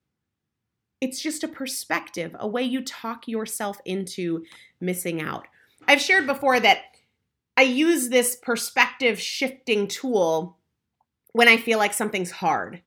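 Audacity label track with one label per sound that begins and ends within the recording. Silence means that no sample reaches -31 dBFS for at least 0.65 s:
1.020000	6.810000	sound
7.570000	10.460000	sound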